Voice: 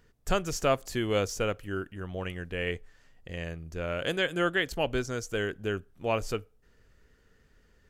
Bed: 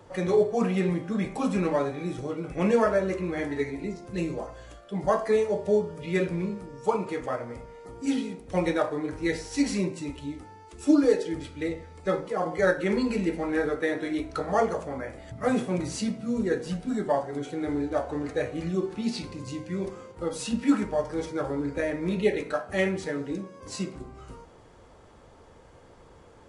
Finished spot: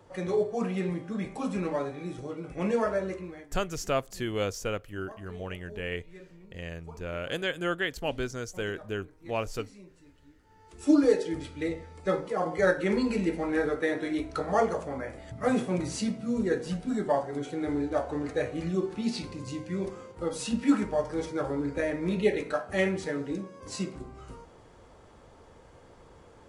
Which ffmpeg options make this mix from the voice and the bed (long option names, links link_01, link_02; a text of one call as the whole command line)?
ffmpeg -i stem1.wav -i stem2.wav -filter_complex "[0:a]adelay=3250,volume=-2.5dB[link_01];[1:a]volume=17.5dB,afade=type=out:start_time=3.06:duration=0.41:silence=0.11885,afade=type=in:start_time=10.43:duration=0.5:silence=0.0749894[link_02];[link_01][link_02]amix=inputs=2:normalize=0" out.wav